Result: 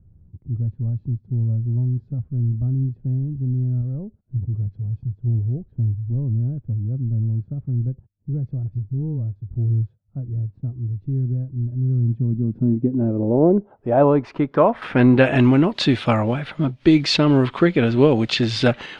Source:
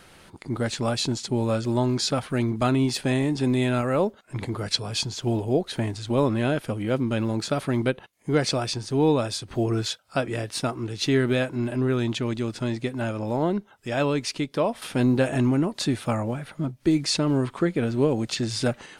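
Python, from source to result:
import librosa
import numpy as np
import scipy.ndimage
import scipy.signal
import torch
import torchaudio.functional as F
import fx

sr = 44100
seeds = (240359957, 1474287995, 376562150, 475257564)

y = fx.dispersion(x, sr, late='highs', ms=46.0, hz=690.0, at=(8.63, 9.36))
y = fx.filter_sweep_lowpass(y, sr, from_hz=100.0, to_hz=3300.0, start_s=11.79, end_s=15.52, q=1.6)
y = y * 10.0 ** (7.0 / 20.0)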